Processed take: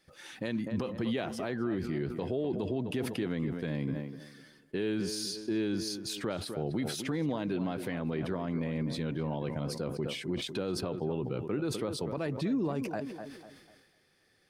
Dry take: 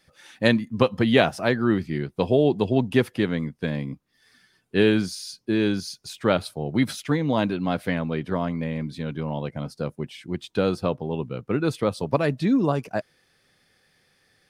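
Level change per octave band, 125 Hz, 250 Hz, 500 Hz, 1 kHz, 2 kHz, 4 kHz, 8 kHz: −8.5, −9.0, −10.5, −12.0, −13.0, −7.0, −1.5 decibels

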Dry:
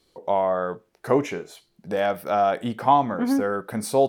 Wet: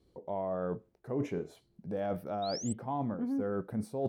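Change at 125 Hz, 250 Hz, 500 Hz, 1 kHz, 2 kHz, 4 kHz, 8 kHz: −4.5, −8.5, −12.5, −17.0, −18.0, −8.0, −7.5 decibels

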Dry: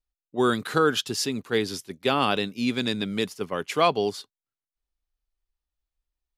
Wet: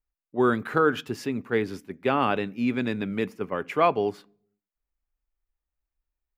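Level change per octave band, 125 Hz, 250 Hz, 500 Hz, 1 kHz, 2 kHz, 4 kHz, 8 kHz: 0.0 dB, +0.5 dB, 0.0 dB, 0.0 dB, −0.5 dB, −11.5 dB, below −10 dB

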